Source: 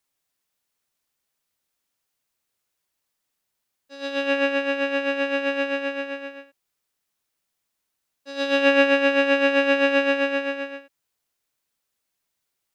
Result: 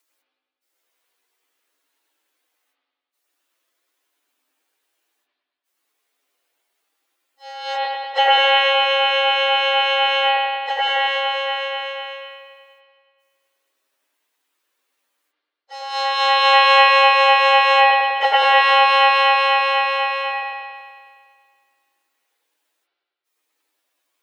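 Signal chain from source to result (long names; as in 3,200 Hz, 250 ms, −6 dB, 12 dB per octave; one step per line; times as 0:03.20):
gate pattern "x..xxxxxxxxx" 136 BPM −60 dB
spring reverb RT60 1 s, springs 49 ms, chirp 45 ms, DRR −5 dB
time stretch by phase vocoder 1.9×
frequency shifter +260 Hz
level +6.5 dB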